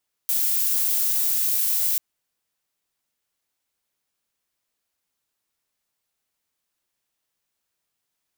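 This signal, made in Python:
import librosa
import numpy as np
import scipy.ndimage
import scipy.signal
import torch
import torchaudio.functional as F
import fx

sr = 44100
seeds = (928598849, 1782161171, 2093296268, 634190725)

y = fx.noise_colour(sr, seeds[0], length_s=1.69, colour='violet', level_db=-22.0)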